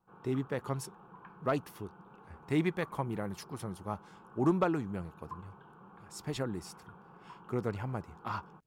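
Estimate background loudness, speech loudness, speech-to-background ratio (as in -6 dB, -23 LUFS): -54.5 LUFS, -36.0 LUFS, 18.5 dB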